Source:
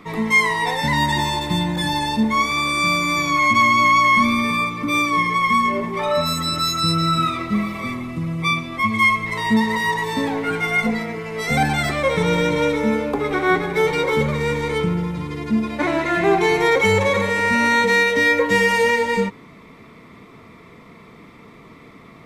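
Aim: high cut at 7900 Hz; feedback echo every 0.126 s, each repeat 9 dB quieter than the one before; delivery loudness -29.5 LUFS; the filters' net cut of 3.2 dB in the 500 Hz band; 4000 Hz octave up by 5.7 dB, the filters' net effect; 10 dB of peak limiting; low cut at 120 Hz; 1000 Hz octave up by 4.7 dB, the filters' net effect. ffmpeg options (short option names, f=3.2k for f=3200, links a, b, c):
-af "highpass=120,lowpass=7.9k,equalizer=f=500:t=o:g=-5,equalizer=f=1k:t=o:g=6,equalizer=f=4k:t=o:g=6.5,alimiter=limit=-12dB:level=0:latency=1,aecho=1:1:126|252|378|504:0.355|0.124|0.0435|0.0152,volume=-10.5dB"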